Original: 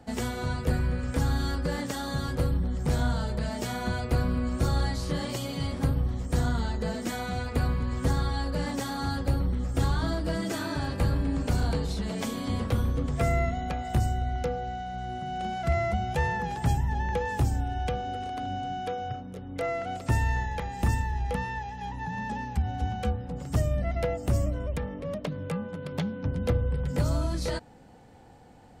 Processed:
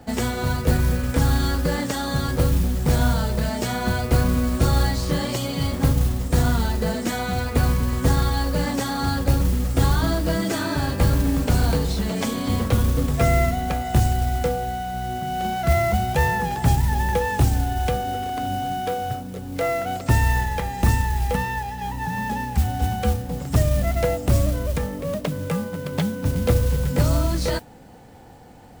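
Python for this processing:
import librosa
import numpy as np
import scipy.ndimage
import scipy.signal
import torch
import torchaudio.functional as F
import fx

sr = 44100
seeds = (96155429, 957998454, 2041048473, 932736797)

y = fx.mod_noise(x, sr, seeds[0], snr_db=19)
y = y * librosa.db_to_amplitude(7.0)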